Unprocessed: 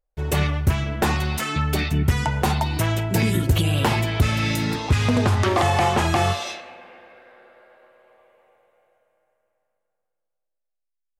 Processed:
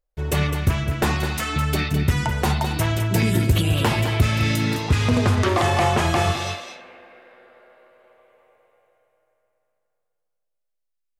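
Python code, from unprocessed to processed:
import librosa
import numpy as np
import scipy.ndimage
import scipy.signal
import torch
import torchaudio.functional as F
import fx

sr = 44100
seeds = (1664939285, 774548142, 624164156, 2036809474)

p1 = fx.peak_eq(x, sr, hz=810.0, db=-3.5, octaves=0.27)
y = p1 + fx.echo_single(p1, sr, ms=209, db=-8.5, dry=0)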